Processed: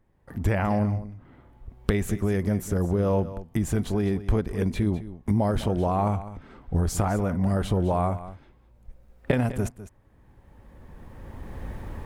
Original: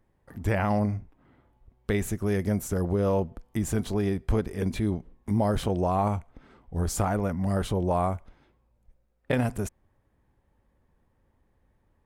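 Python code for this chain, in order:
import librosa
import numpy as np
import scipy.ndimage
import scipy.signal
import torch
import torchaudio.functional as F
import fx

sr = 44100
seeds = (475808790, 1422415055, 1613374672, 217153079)

p1 = fx.recorder_agc(x, sr, target_db=-16.5, rise_db_per_s=14.0, max_gain_db=30)
p2 = fx.bass_treble(p1, sr, bass_db=2, treble_db=-3)
y = p2 + fx.echo_single(p2, sr, ms=204, db=-14.5, dry=0)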